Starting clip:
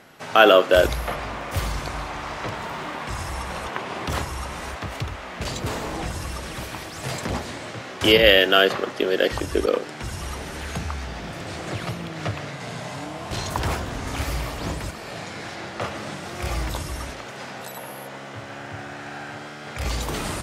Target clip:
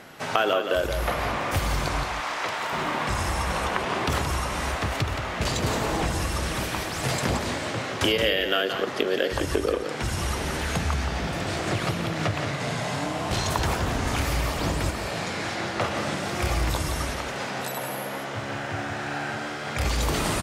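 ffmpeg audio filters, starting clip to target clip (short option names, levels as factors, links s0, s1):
-filter_complex "[0:a]asettb=1/sr,asplit=3[s0][s1][s2];[s0]atrim=end=2.034[s3];[s1]atrim=start=2.03:end=2.73,asetpts=PTS-STARTPTS,afade=t=in:d=0.004:c=qsin,afade=t=out:st=0.696:d=0.004:c=qsin,highpass=f=820:p=1[s4];[s2]atrim=start=2.726[s5];[s3][s4]acrossfade=d=0.004:c1=hsin:c2=qsin[s6];[s6][s5]acrossfade=d=0.004:c1=qsin:c2=hsin,acompressor=threshold=0.0562:ratio=6,asplit=2[s7][s8];[s8]aecho=0:1:173:0.422[s9];[s7][s9]amix=inputs=2:normalize=0,volume=1.58"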